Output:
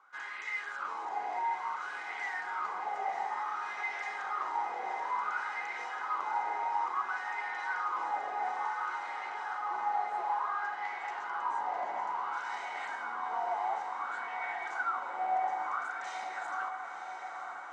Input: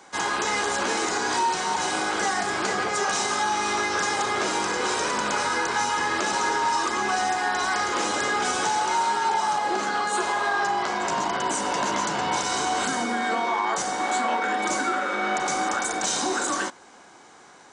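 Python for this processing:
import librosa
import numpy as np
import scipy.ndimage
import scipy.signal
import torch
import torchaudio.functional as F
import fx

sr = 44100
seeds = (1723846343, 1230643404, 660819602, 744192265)

y = fx.wah_lfo(x, sr, hz=0.57, low_hz=740.0, high_hz=2000.0, q=7.3)
y = fx.notch(y, sr, hz=1700.0, q=7.1)
y = fx.echo_diffused(y, sr, ms=988, feedback_pct=74, wet_db=-8)
y = F.gain(torch.from_numpy(y), -1.0).numpy()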